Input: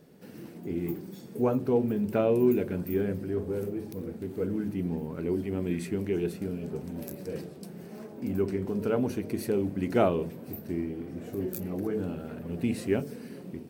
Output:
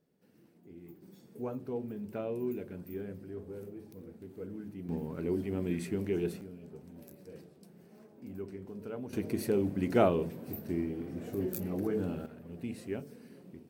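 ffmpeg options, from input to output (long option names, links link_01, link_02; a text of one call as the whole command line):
ffmpeg -i in.wav -af "asetnsamples=nb_out_samples=441:pad=0,asendcmd='1.02 volume volume -12dB;4.89 volume volume -3dB;6.41 volume volume -13.5dB;9.13 volume volume -1.5dB;12.26 volume volume -10.5dB',volume=-19dB" out.wav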